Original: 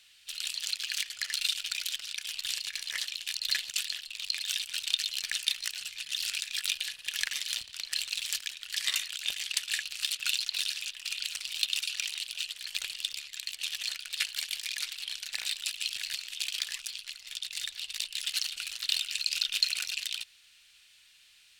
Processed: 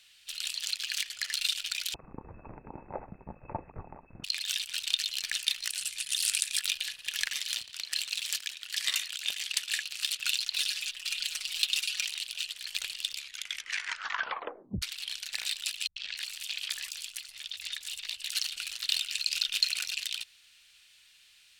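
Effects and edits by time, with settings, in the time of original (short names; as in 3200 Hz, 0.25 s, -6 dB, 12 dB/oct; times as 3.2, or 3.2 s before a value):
1.94–4.24 inverted band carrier 2600 Hz
5.7–6.59 bell 9500 Hz +12.5 dB 0.82 oct
7.37–10.03 HPF 110 Hz 6 dB/oct
10.56–12.05 comb 5.4 ms
13.17 tape stop 1.65 s
15.87–18.35 three bands offset in time lows, mids, highs 90/300 ms, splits 150/5300 Hz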